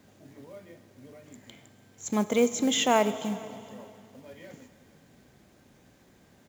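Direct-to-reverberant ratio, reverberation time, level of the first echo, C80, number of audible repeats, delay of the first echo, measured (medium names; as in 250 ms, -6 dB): 11.5 dB, 2.4 s, -23.5 dB, 13.0 dB, 1, 448 ms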